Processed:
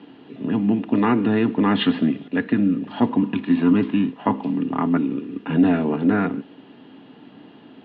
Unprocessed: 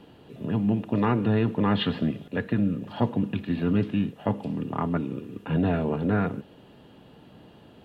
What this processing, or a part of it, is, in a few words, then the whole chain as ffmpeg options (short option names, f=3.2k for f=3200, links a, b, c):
kitchen radio: -filter_complex "[0:a]asettb=1/sr,asplit=3[a][b][c];[a]atrim=end=3.114[d];[b]atrim=start=3.11:end=4.5,asetpts=PTS-STARTPTS,afade=t=in:d=0.004:c=qsin,afade=t=out:st=1.386:d=0.004:c=qsin,equalizer=f=1k:t=o:w=0.36:g=10[e];[c]atrim=start=4.496[f];[d][e]acrossfade=d=0.004:c1=hsin:c2=qsin[g];[g][f]acrossfade=d=0.004:c1=qsin:c2=hsin,highpass=200,equalizer=f=270:t=q:w=4:g=9,equalizer=f=550:t=q:w=4:g=-7,equalizer=f=2k:t=q:w=4:g=3,lowpass=f=4k:w=0.5412,lowpass=f=4k:w=1.3066,volume=5dB"